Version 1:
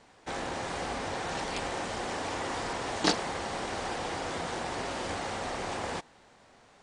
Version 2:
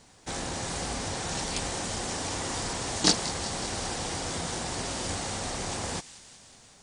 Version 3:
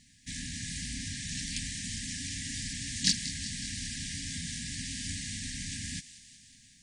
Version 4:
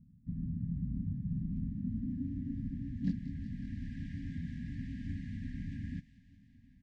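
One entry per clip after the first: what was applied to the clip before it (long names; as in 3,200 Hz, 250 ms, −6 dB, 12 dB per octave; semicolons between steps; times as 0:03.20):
bass and treble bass +9 dB, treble +14 dB; delay with a high-pass on its return 185 ms, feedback 70%, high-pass 2,400 Hz, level −14 dB; level −2 dB
brick-wall band-stop 280–1,600 Hz; in parallel at −11.5 dB: soft clipping −15 dBFS, distortion −17 dB; on the sum: level −5 dB
low-pass filter sweep 180 Hz → 770 Hz, 0:01.42–0:03.99; slap from a distant wall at 210 metres, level −23 dB; level +1.5 dB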